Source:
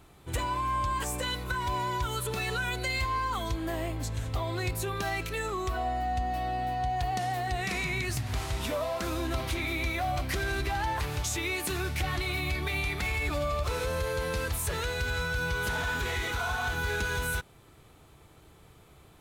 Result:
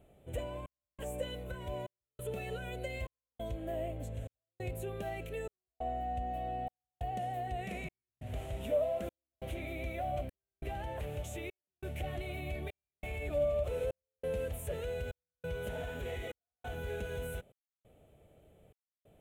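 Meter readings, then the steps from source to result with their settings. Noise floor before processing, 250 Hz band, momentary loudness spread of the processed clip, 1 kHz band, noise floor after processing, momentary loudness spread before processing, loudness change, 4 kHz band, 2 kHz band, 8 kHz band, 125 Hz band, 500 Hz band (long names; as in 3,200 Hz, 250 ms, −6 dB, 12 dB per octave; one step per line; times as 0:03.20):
−56 dBFS, −8.5 dB, 11 LU, −10.5 dB, below −85 dBFS, 3 LU, −8.5 dB, −16.0 dB, −16.0 dB, −17.0 dB, −9.0 dB, −2.0 dB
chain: drawn EQ curve 150 Hz 0 dB, 210 Hz +4 dB, 330 Hz −2 dB, 600 Hz +11 dB, 1,000 Hz −13 dB, 3,000 Hz −3 dB, 4,800 Hz −21 dB, 7,400 Hz −8 dB, 13,000 Hz −5 dB
gate pattern "xxxxxx...xx" 137 BPM −60 dB
level −7.5 dB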